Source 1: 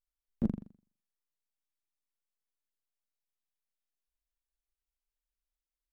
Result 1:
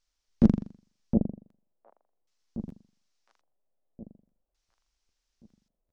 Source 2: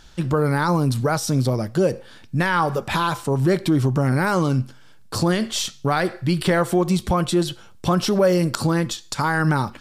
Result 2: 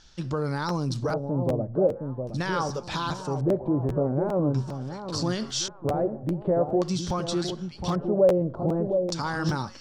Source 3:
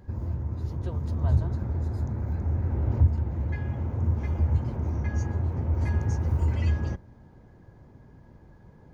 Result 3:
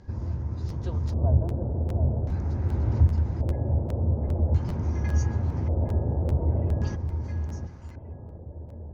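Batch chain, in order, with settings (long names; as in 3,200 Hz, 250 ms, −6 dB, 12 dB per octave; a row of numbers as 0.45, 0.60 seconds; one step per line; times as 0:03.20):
on a send: delay that swaps between a low-pass and a high-pass 714 ms, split 1,000 Hz, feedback 54%, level −6 dB
on the sum: auto-filter low-pass square 0.44 Hz 610–5,700 Hz
dynamic equaliser 2,100 Hz, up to −5 dB, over −44 dBFS, Q 1.9
regular buffer underruns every 0.40 s, samples 512, repeat, from 0:00.68
loudness normalisation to −27 LKFS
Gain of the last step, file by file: +11.0, −8.5, +0.5 decibels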